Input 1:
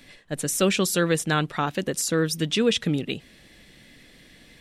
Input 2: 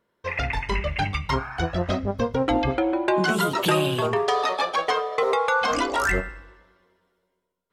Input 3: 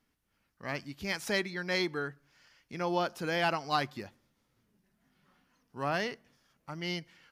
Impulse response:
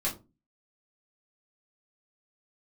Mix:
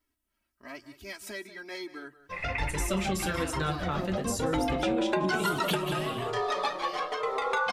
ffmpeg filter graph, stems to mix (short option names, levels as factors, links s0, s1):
-filter_complex "[0:a]adelay=2300,volume=0.473,asplit=3[s0][s1][s2];[s1]volume=0.398[s3];[s2]volume=0.211[s4];[1:a]adelay=2050,volume=1.41,asplit=3[s5][s6][s7];[s6]volume=0.141[s8];[s7]volume=0.335[s9];[2:a]aecho=1:1:3.1:0.91,acompressor=threshold=0.0316:ratio=3,aexciter=amount=1.8:drive=5.9:freq=7700,volume=0.668,asplit=3[s10][s11][s12];[s11]volume=0.168[s13];[s12]apad=whole_len=430942[s14];[s5][s14]sidechaincompress=threshold=0.001:ratio=8:attack=16:release=390[s15];[3:a]atrim=start_sample=2205[s16];[s3][s8]amix=inputs=2:normalize=0[s17];[s17][s16]afir=irnorm=-1:irlink=0[s18];[s4][s9][s13]amix=inputs=3:normalize=0,aecho=0:1:186:1[s19];[s0][s15][s10][s18][s19]amix=inputs=5:normalize=0,flanger=delay=2.1:depth=3.6:regen=-45:speed=1.1:shape=sinusoidal,acompressor=threshold=0.0501:ratio=3"